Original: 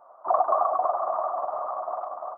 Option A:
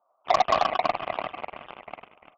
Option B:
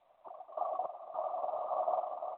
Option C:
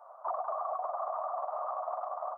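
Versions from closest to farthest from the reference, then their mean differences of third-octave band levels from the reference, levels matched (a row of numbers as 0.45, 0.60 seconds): C, B, A; 3.0, 4.0, 10.0 decibels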